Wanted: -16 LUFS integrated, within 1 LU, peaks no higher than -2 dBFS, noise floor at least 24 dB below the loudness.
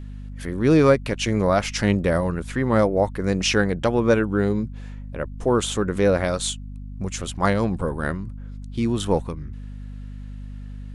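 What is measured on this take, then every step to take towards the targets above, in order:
hum 50 Hz; harmonics up to 250 Hz; hum level -32 dBFS; loudness -22.0 LUFS; peak -3.5 dBFS; loudness target -16.0 LUFS
-> de-hum 50 Hz, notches 5; gain +6 dB; limiter -2 dBFS

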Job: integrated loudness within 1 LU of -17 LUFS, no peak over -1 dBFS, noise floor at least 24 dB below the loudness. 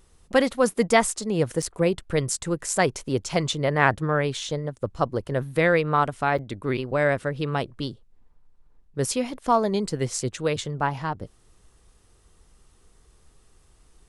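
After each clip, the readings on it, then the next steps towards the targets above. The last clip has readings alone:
dropouts 2; longest dropout 6.2 ms; loudness -25.0 LUFS; peak -4.0 dBFS; loudness target -17.0 LUFS
-> interpolate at 1.62/6.38, 6.2 ms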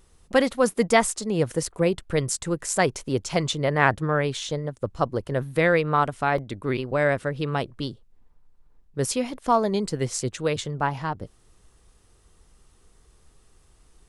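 dropouts 0; loudness -25.0 LUFS; peak -4.0 dBFS; loudness target -17.0 LUFS
-> gain +8 dB; limiter -1 dBFS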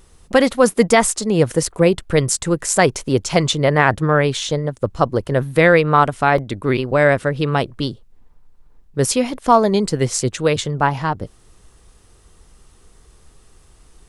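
loudness -17.5 LUFS; peak -1.0 dBFS; noise floor -51 dBFS

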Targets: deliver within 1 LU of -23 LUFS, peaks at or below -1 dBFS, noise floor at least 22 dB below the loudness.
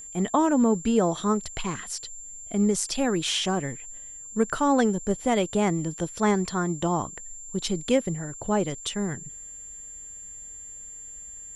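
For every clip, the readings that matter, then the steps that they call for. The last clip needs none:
steady tone 7300 Hz; tone level -39 dBFS; loudness -26.0 LUFS; peak -9.0 dBFS; loudness target -23.0 LUFS
-> notch 7300 Hz, Q 30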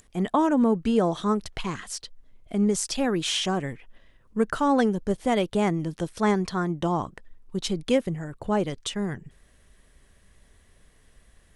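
steady tone none; loudness -26.0 LUFS; peak -9.0 dBFS; loudness target -23.0 LUFS
-> gain +3 dB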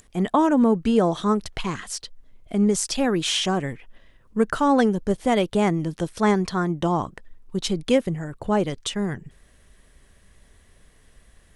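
loudness -23.0 LUFS; peak -6.0 dBFS; noise floor -56 dBFS

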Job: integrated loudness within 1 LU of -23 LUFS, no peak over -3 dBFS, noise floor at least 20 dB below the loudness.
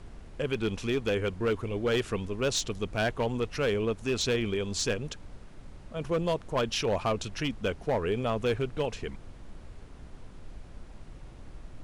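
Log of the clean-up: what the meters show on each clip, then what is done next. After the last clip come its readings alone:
clipped 1.3%; flat tops at -21.5 dBFS; noise floor -48 dBFS; noise floor target -51 dBFS; loudness -30.5 LUFS; peak -21.5 dBFS; loudness target -23.0 LUFS
-> clip repair -21.5 dBFS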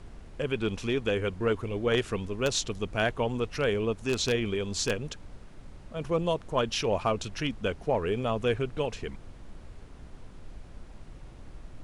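clipped 0.0%; noise floor -48 dBFS; noise floor target -50 dBFS
-> noise print and reduce 6 dB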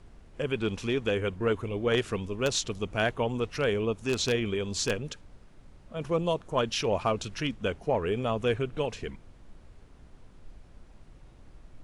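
noise floor -54 dBFS; loudness -29.5 LUFS; peak -12.5 dBFS; loudness target -23.0 LUFS
-> gain +6.5 dB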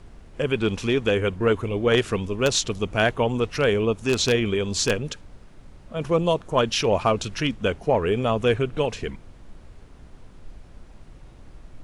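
loudness -23.0 LUFS; peak -6.0 dBFS; noise floor -48 dBFS

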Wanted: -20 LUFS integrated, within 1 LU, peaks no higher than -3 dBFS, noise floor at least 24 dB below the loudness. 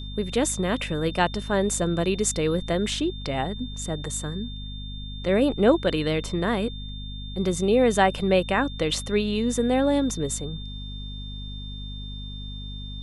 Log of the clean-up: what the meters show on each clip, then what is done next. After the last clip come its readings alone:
hum 50 Hz; harmonics up to 250 Hz; hum level -33 dBFS; steady tone 3600 Hz; tone level -40 dBFS; loudness -24.5 LUFS; peak -6.0 dBFS; loudness target -20.0 LUFS
-> notches 50/100/150/200/250 Hz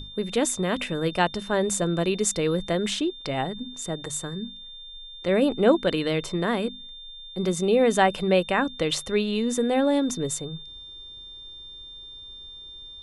hum none; steady tone 3600 Hz; tone level -40 dBFS
-> notch 3600 Hz, Q 30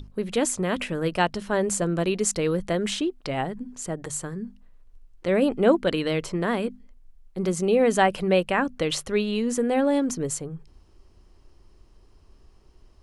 steady tone none; loudness -25.0 LUFS; peak -7.0 dBFS; loudness target -20.0 LUFS
-> gain +5 dB; limiter -3 dBFS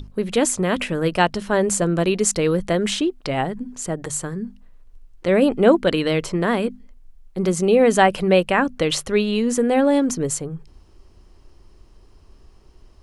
loudness -20.0 LUFS; peak -3.0 dBFS; noise floor -50 dBFS

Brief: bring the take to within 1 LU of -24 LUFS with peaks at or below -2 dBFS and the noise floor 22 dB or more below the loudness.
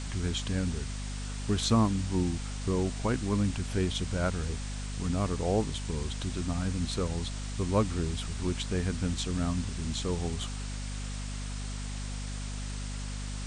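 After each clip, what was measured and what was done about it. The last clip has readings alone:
hum 50 Hz; harmonics up to 250 Hz; hum level -34 dBFS; noise floor -36 dBFS; noise floor target -54 dBFS; loudness -32.0 LUFS; peak -12.5 dBFS; loudness target -24.0 LUFS
-> notches 50/100/150/200/250 Hz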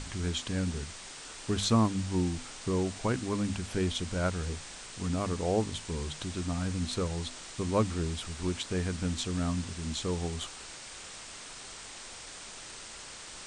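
hum none; noise floor -46 dBFS; noise floor target -56 dBFS
-> noise print and reduce 10 dB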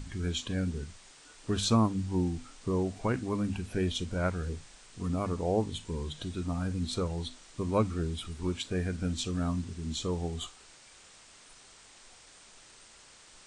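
noise floor -56 dBFS; loudness -32.5 LUFS; peak -14.5 dBFS; loudness target -24.0 LUFS
-> gain +8.5 dB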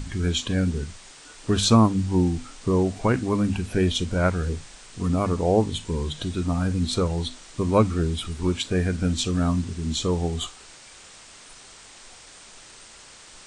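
loudness -24.0 LUFS; peak -6.0 dBFS; noise floor -47 dBFS

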